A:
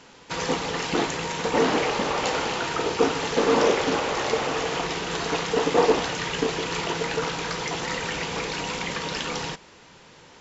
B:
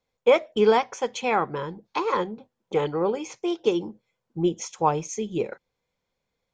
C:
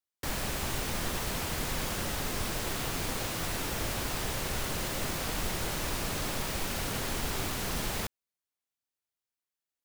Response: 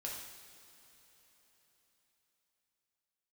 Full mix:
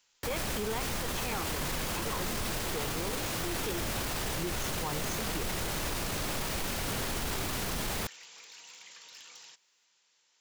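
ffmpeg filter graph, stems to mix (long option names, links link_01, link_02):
-filter_complex "[0:a]aderivative,volume=32dB,asoftclip=hard,volume=-32dB,volume=-11.5dB[link_01];[1:a]equalizer=frequency=630:width_type=o:width=1.5:gain=-7,volume=-7.5dB[link_02];[2:a]volume=1.5dB[link_03];[link_01][link_02][link_03]amix=inputs=3:normalize=0,alimiter=level_in=0.5dB:limit=-24dB:level=0:latency=1:release=10,volume=-0.5dB"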